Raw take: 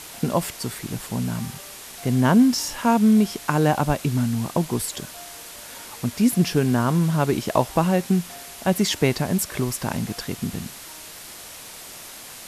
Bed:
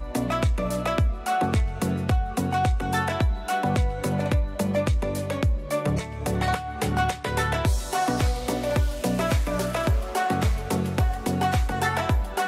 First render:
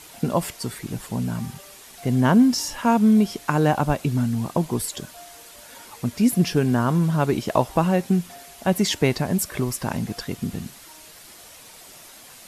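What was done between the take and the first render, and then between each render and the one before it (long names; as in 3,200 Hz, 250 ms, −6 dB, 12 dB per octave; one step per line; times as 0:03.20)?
broadband denoise 7 dB, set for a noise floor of −40 dBFS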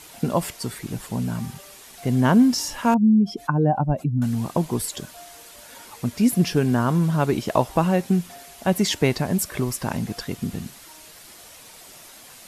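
0:02.94–0:04.22: expanding power law on the bin magnitudes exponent 2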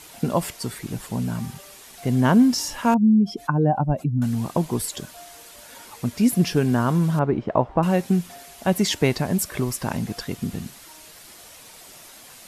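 0:07.19–0:07.83: low-pass filter 1,400 Hz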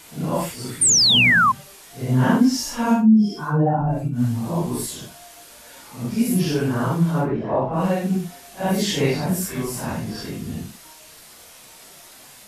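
random phases in long frames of 200 ms
0:00.81–0:01.52: sound drawn into the spectrogram fall 1,000–9,400 Hz −15 dBFS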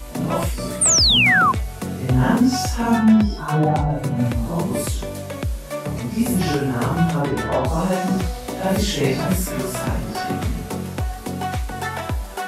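mix in bed −2 dB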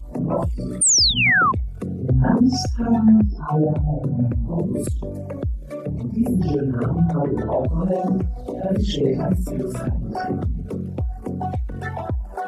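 spectral envelope exaggerated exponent 2
auto-filter notch sine 1 Hz 780–3,800 Hz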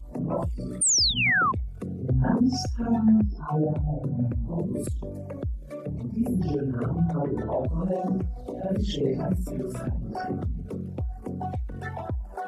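level −6 dB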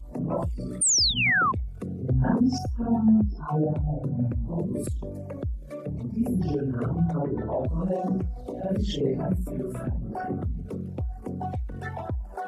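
0:02.58–0:03.28: flat-topped bell 3,500 Hz −13 dB 2.6 octaves
0:07.18–0:07.60: high-frequency loss of the air 280 metres
0:09.01–0:10.48: parametric band 5,300 Hz −14.5 dB 0.97 octaves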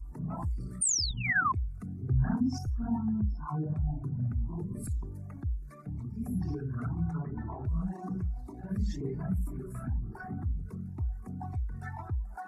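phaser with its sweep stopped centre 1,300 Hz, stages 4
flanger whose copies keep moving one way rising 2 Hz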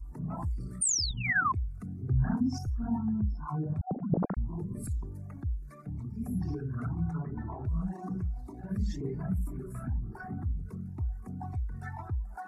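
0:03.81–0:04.37: three sine waves on the formant tracks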